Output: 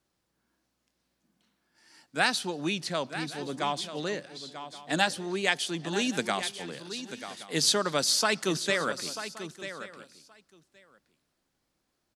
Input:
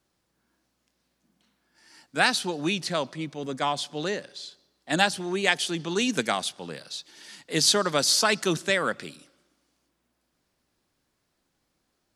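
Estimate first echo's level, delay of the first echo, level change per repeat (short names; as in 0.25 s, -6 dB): -11.5 dB, 0.94 s, no steady repeat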